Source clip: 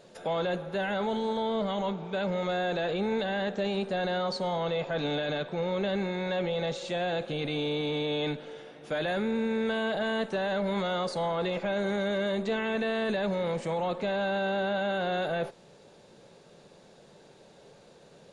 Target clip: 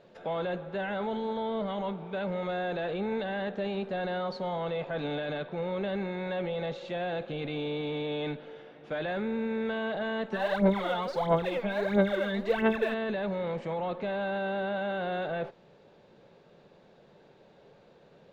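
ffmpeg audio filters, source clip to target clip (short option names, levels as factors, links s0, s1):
-filter_complex "[0:a]lowpass=3100,asplit=3[s0][s1][s2];[s0]afade=t=out:st=10.31:d=0.02[s3];[s1]aphaser=in_gain=1:out_gain=1:delay=4.6:decay=0.75:speed=1.5:type=sinusoidal,afade=t=in:st=10.31:d=0.02,afade=t=out:st=12.93:d=0.02[s4];[s2]afade=t=in:st=12.93:d=0.02[s5];[s3][s4][s5]amix=inputs=3:normalize=0,volume=0.75"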